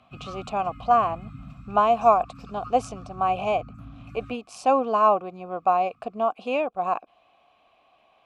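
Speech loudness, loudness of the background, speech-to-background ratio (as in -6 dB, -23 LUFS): -24.0 LUFS, -43.5 LUFS, 19.5 dB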